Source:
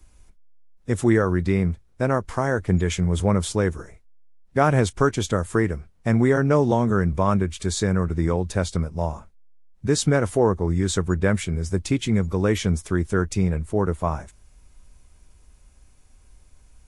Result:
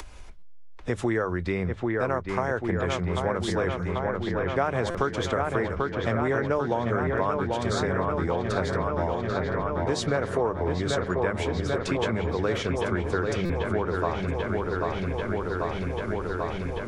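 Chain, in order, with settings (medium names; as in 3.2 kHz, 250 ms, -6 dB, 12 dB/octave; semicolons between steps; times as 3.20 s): bass shelf 260 Hz +11 dB; hum notches 50/100/150/200 Hz; in parallel at +2 dB: upward compressor, threshold -20 dBFS; on the sum: three-band isolator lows -16 dB, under 440 Hz, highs -15 dB, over 5.2 kHz; on a send: feedback echo behind a low-pass 790 ms, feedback 75%, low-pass 3.1 kHz, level -5 dB; on the sum: compression 3:1, threshold -26 dBFS, peak gain reduction 14.5 dB; buffer glitch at 0.38/4.90/13.45 s, samples 256, times 7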